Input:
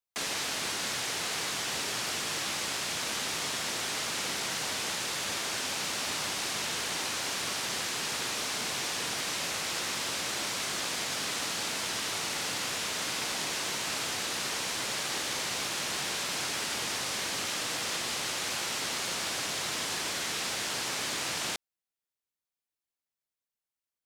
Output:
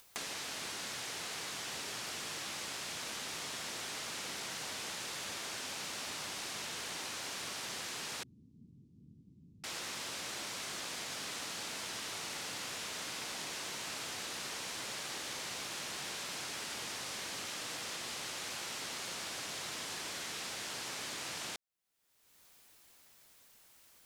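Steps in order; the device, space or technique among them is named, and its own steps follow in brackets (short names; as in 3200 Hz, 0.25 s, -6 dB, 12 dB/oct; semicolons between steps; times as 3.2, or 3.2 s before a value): upward and downward compression (upward compressor, threshold -42 dBFS; compressor 4:1, threshold -43 dBFS, peak gain reduction 11.5 dB); 8.23–9.64 inverse Chebyshev low-pass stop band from 590 Hz, stop band 50 dB; gain +2 dB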